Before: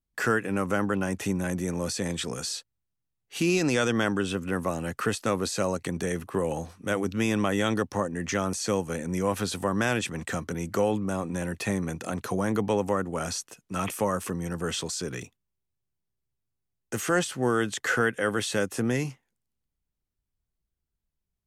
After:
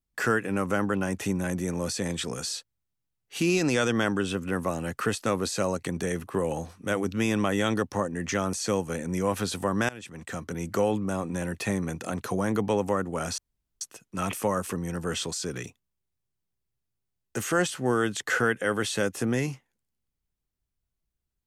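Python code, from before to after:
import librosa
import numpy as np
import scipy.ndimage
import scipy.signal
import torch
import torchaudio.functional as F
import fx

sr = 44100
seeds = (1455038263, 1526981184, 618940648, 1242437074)

y = fx.edit(x, sr, fx.fade_in_from(start_s=9.89, length_s=0.79, floor_db=-21.0),
    fx.insert_room_tone(at_s=13.38, length_s=0.43), tone=tone)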